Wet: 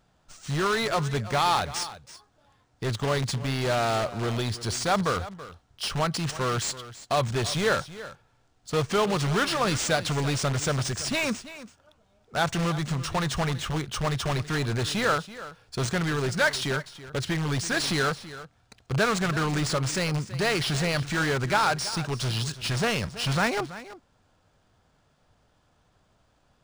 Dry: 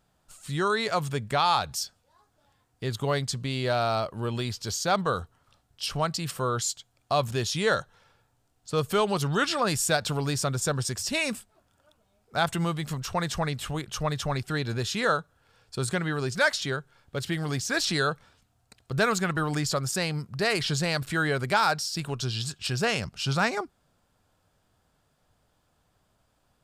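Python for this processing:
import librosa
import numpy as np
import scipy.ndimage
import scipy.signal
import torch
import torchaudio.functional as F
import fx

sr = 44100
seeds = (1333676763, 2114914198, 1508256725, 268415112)

p1 = (np.mod(10.0 ** (24.5 / 20.0) * x + 1.0, 2.0) - 1.0) / 10.0 ** (24.5 / 20.0)
p2 = x + (p1 * librosa.db_to_amplitude(-4.0))
p3 = p2 + 10.0 ** (-15.5 / 20.0) * np.pad(p2, (int(330 * sr / 1000.0), 0))[:len(p2)]
y = np.interp(np.arange(len(p3)), np.arange(len(p3))[::3], p3[::3])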